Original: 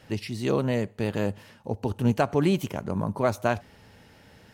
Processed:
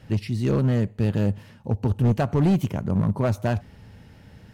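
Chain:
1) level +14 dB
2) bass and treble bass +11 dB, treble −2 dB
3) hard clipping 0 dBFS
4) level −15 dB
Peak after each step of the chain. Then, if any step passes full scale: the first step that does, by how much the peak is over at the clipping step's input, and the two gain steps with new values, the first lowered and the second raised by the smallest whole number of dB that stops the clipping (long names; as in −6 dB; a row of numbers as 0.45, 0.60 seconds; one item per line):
+5.0, +9.0, 0.0, −15.0 dBFS
step 1, 9.0 dB
step 1 +5 dB, step 4 −6 dB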